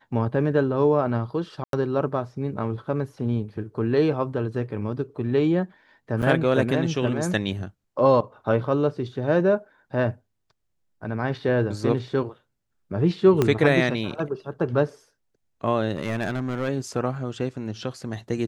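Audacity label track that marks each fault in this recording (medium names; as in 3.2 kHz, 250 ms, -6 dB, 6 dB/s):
1.640000	1.730000	dropout 92 ms
6.220000	6.230000	dropout 7.5 ms
13.420000	13.420000	pop -8 dBFS
15.960000	16.690000	clipped -21.5 dBFS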